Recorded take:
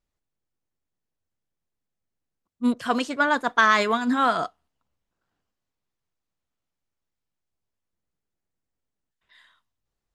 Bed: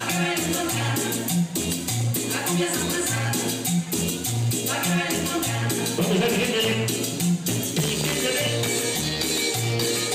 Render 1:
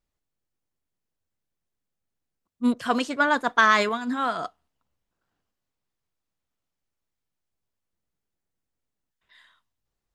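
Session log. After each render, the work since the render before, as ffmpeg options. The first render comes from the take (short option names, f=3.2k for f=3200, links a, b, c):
-filter_complex "[0:a]asplit=3[a][b][c];[a]atrim=end=3.892[d];[b]atrim=start=3.888:end=4.442,asetpts=PTS-STARTPTS,volume=-5dB[e];[c]atrim=start=4.438[f];[d][e]acrossfade=d=0.004:c1=hsin:c2=hsin[g];[g][f]acrossfade=d=0.004:c1=hsin:c2=hsin"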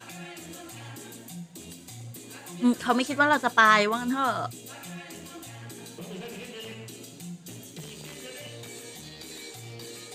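-filter_complex "[1:a]volume=-18dB[a];[0:a][a]amix=inputs=2:normalize=0"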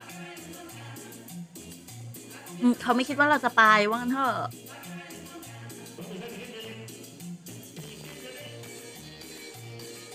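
-af "adynamicequalizer=threshold=0.00224:dfrequency=7200:dqfactor=1.4:tfrequency=7200:tqfactor=1.4:attack=5:release=100:ratio=0.375:range=2.5:mode=cutabove:tftype=bell,bandreject=f=3.8k:w=10"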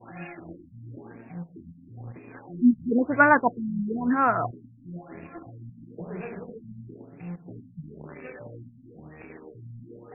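-filter_complex "[0:a]asplit=2[a][b];[b]aeval=exprs='val(0)*gte(abs(val(0)),0.0126)':c=same,volume=-3.5dB[c];[a][c]amix=inputs=2:normalize=0,afftfilt=real='re*lt(b*sr/1024,250*pow(2800/250,0.5+0.5*sin(2*PI*1*pts/sr)))':imag='im*lt(b*sr/1024,250*pow(2800/250,0.5+0.5*sin(2*PI*1*pts/sr)))':win_size=1024:overlap=0.75"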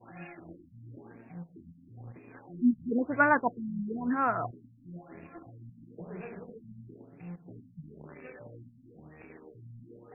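-af "volume=-6dB"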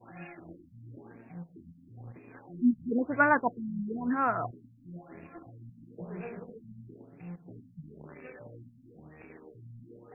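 -filter_complex "[0:a]asettb=1/sr,asplit=3[a][b][c];[a]atrim=end=5.984[d];[b]atrim=start=5.98:end=6.44,asetpts=PTS-STARTPTS,afade=t=in:d=0.004:c=qsin,afade=t=out:st=0.456:d=0.004:c=qsin,asplit=2[e][f];[f]adelay=17,volume=-6.5dB[g];[e][g]amix=inputs=2:normalize=0,atrim=end_sample=20286[h];[c]atrim=start=6.436[i];[d][h]acrossfade=d=0.004:c1=hsin:c2=qsin[j];[j][i]acrossfade=d=0.004:c1=qsin:c2=hsin"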